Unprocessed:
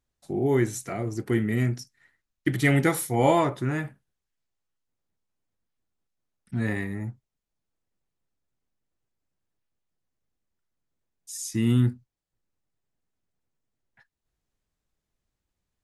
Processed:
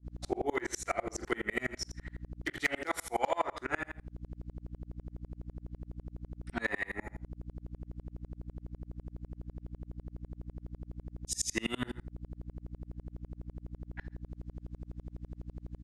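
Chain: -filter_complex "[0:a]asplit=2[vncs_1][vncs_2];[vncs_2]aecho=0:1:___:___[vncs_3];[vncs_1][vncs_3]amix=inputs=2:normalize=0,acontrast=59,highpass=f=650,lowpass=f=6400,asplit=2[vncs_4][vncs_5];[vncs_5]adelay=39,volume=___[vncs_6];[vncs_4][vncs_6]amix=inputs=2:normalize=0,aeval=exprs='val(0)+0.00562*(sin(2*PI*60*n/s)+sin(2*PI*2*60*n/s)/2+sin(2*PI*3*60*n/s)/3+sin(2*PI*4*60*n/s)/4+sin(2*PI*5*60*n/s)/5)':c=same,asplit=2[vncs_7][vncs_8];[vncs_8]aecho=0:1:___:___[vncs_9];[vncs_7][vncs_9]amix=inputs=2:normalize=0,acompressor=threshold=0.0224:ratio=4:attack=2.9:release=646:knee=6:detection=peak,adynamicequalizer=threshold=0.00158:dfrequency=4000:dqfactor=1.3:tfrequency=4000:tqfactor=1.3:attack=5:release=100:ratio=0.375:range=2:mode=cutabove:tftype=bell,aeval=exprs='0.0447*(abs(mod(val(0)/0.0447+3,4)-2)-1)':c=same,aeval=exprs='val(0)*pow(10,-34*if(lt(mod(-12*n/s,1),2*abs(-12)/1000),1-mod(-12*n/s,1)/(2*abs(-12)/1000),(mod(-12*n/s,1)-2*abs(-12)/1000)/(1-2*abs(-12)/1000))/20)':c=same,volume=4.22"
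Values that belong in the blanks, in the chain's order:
118, 0.141, 0.316, 77, 0.0668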